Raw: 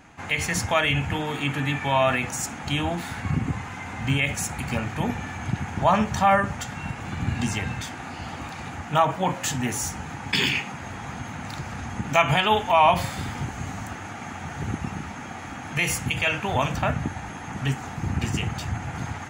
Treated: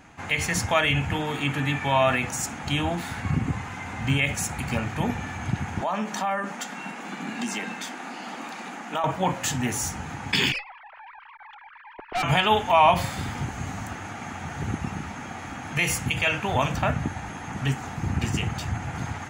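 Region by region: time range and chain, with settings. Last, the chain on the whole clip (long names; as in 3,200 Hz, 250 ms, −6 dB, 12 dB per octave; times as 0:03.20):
0:05.81–0:09.04: Butterworth high-pass 190 Hz 48 dB per octave + downward compressor 3 to 1, threshold −25 dBFS
0:10.52–0:12.23: three sine waves on the formant tracks + tube saturation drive 23 dB, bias 0.7
whole clip: no processing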